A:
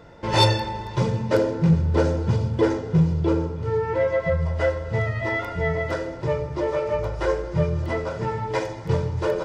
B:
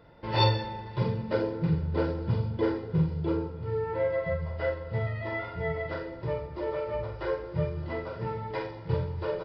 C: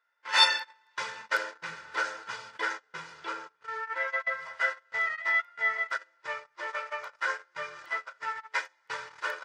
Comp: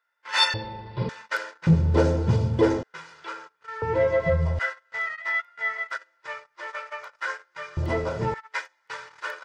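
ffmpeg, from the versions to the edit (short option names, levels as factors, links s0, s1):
-filter_complex "[0:a]asplit=3[s0][s1][s2];[2:a]asplit=5[s3][s4][s5][s6][s7];[s3]atrim=end=0.542[s8];[1:a]atrim=start=0.538:end=1.092[s9];[s4]atrim=start=1.088:end=1.672[s10];[s0]atrim=start=1.668:end=2.832[s11];[s5]atrim=start=2.828:end=3.822[s12];[s1]atrim=start=3.818:end=4.592[s13];[s6]atrim=start=4.588:end=7.772[s14];[s2]atrim=start=7.768:end=8.342[s15];[s7]atrim=start=8.338[s16];[s8][s9]acrossfade=d=0.004:c1=hsin:c2=hsin[s17];[s17][s10]acrossfade=d=0.004:c1=hsin:c2=hsin[s18];[s18][s11]acrossfade=d=0.004:c1=hsin:c2=hsin[s19];[s19][s12]acrossfade=d=0.004:c1=hsin:c2=hsin[s20];[s20][s13]acrossfade=d=0.004:c1=hsin:c2=hsin[s21];[s21][s14]acrossfade=d=0.004:c1=hsin:c2=hsin[s22];[s22][s15]acrossfade=d=0.004:c1=hsin:c2=hsin[s23];[s23][s16]acrossfade=d=0.004:c1=hsin:c2=hsin"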